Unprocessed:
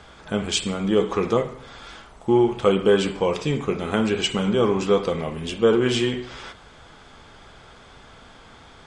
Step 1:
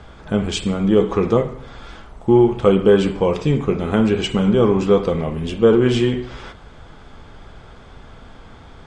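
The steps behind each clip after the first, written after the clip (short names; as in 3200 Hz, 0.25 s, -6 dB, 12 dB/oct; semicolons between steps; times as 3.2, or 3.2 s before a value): tilt -2 dB/oct; gain +2 dB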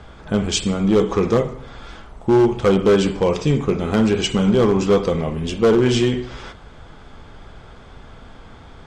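hard clip -9.5 dBFS, distortion -15 dB; dynamic EQ 6000 Hz, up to +8 dB, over -49 dBFS, Q 1.2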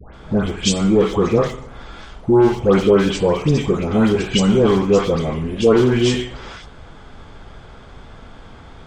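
dispersion highs, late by 0.142 s, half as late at 1400 Hz; gain +1.5 dB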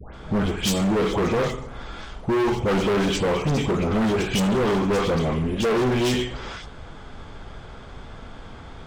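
hard clip -19 dBFS, distortion -6 dB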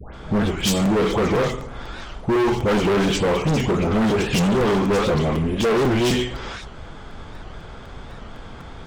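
crackling interface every 0.25 s, samples 256, repeat, from 0.6; record warp 78 rpm, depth 160 cents; gain +2.5 dB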